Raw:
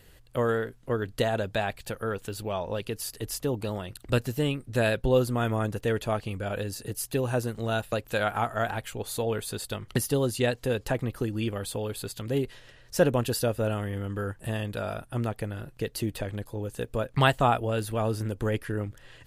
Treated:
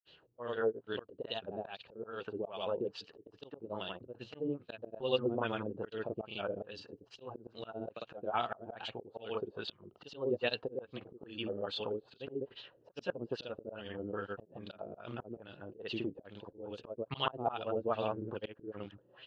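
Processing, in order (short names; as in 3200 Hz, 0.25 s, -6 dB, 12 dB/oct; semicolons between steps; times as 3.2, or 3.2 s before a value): speaker cabinet 210–6500 Hz, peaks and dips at 250 Hz -4 dB, 2000 Hz -10 dB, 2900 Hz +7 dB, 4100 Hz +6 dB; grains 0.1 s, grains 22/s, spray 0.107 s, pitch spread up and down by 0 st; LFO low-pass sine 2.4 Hz 340–3900 Hz; auto swell 0.225 s; gain -4.5 dB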